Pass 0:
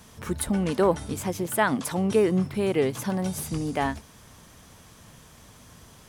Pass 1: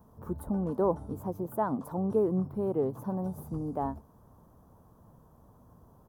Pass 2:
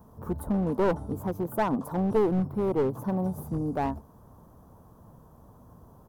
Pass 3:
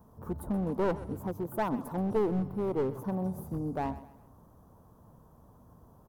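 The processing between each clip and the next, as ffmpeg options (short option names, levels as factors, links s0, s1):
-af "firequalizer=gain_entry='entry(1000,0);entry(2100,-29);entry(4400,-25);entry(8800,-21);entry(15000,-2)':delay=0.05:min_phase=1,volume=0.531"
-af "aeval=exprs='clip(val(0),-1,0.0376)':c=same,volume=1.78"
-af "aecho=1:1:129|258|387:0.15|0.0598|0.0239,volume=0.596"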